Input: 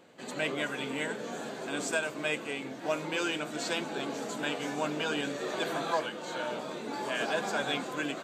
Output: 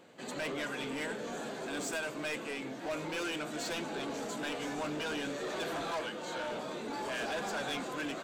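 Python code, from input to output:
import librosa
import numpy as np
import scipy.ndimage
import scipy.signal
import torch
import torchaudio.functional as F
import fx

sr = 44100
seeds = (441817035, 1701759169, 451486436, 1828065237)

y = 10.0 ** (-32.0 / 20.0) * np.tanh(x / 10.0 ** (-32.0 / 20.0))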